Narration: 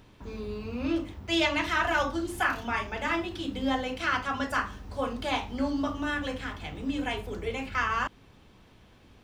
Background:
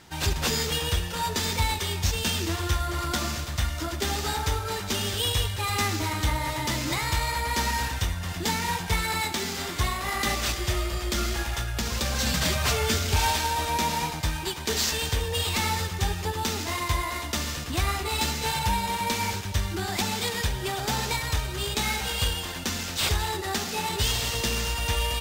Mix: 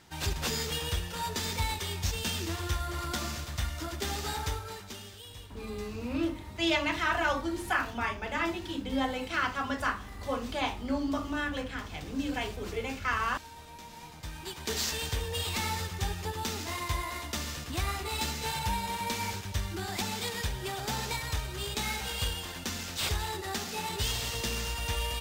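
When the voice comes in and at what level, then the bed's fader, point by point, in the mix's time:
5.30 s, -2.0 dB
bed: 4.46 s -6 dB
5.28 s -22 dB
13.88 s -22 dB
14.66 s -6 dB

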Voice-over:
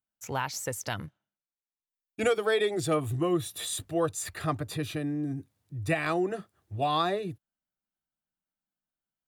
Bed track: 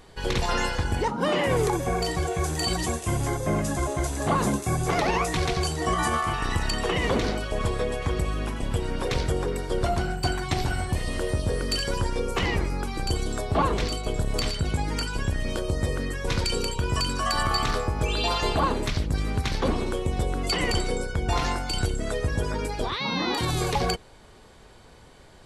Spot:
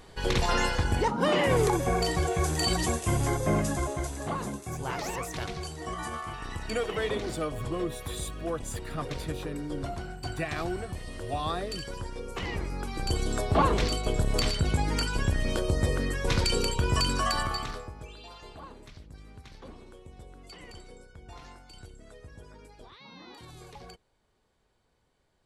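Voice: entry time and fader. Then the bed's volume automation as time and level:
4.50 s, -5.5 dB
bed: 3.57 s -0.5 dB
4.50 s -11 dB
12.21 s -11 dB
13.36 s 0 dB
17.20 s 0 dB
18.21 s -22 dB

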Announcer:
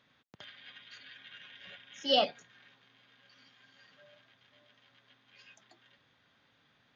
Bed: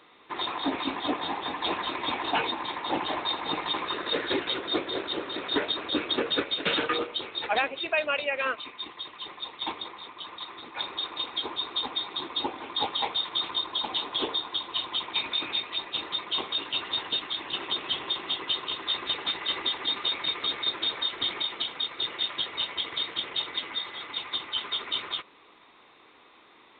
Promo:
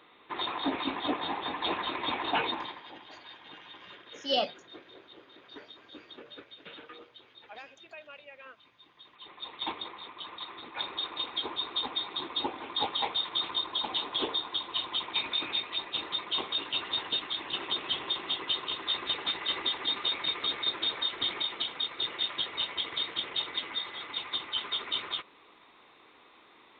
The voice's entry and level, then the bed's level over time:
2.20 s, -1.5 dB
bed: 2.59 s -2 dB
2.93 s -21 dB
8.82 s -21 dB
9.53 s -2 dB

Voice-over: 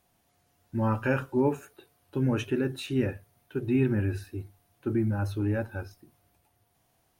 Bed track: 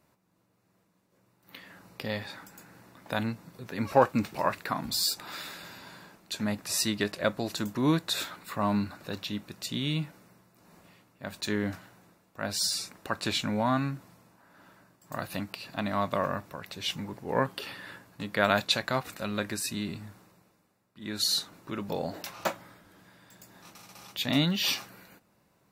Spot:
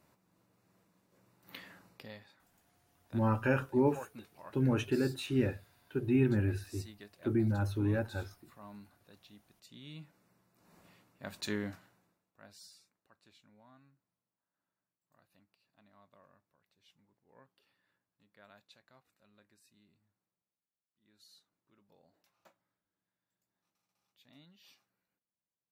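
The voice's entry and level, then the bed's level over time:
2.40 s, -3.0 dB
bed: 1.60 s -1 dB
2.37 s -23.5 dB
9.59 s -23.5 dB
10.83 s -5.5 dB
11.52 s -5.5 dB
13.06 s -35 dB

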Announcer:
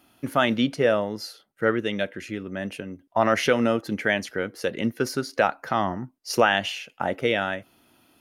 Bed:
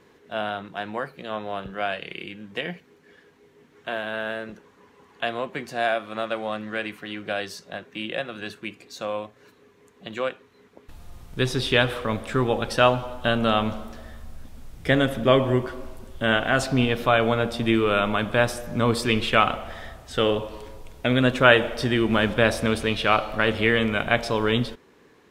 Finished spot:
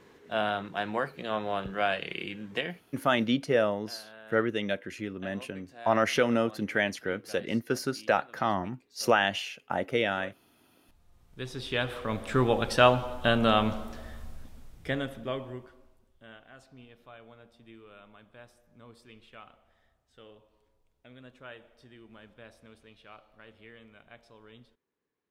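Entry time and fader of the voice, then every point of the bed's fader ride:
2.70 s, -4.0 dB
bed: 2.56 s -0.5 dB
3.10 s -20 dB
11.04 s -20 dB
12.39 s -2 dB
14.24 s -2 dB
16.44 s -31 dB

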